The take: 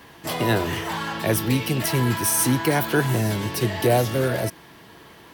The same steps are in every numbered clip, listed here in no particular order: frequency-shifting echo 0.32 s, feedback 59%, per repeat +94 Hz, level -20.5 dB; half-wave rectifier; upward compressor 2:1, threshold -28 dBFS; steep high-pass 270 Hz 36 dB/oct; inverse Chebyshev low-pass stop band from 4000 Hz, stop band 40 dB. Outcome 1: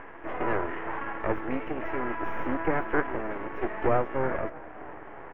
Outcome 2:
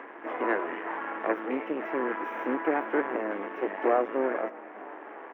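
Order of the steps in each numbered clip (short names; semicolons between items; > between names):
frequency-shifting echo > steep high-pass > upward compressor > half-wave rectifier > inverse Chebyshev low-pass; frequency-shifting echo > half-wave rectifier > inverse Chebyshev low-pass > upward compressor > steep high-pass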